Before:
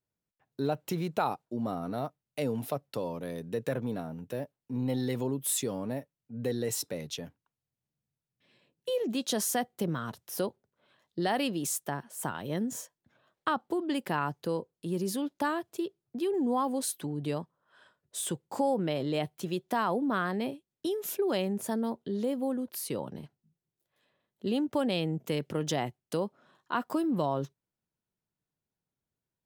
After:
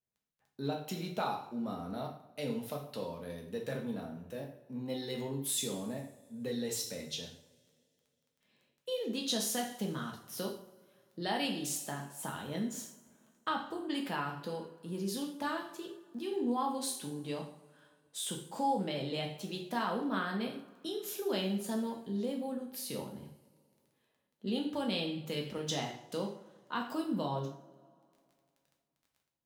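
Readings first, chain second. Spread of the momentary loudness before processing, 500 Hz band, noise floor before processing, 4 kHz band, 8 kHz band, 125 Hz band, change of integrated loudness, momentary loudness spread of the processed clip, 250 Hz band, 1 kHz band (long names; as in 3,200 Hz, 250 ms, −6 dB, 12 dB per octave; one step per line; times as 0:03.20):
9 LU, −6.0 dB, below −85 dBFS, +0.5 dB, −3.5 dB, −5.5 dB, −4.5 dB, 10 LU, −4.5 dB, −4.0 dB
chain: surface crackle 11 per second −46 dBFS
coupled-rooms reverb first 0.57 s, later 2.5 s, from −21 dB, DRR 0 dB
dynamic equaliser 3,900 Hz, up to +7 dB, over −50 dBFS, Q 0.98
level −8.5 dB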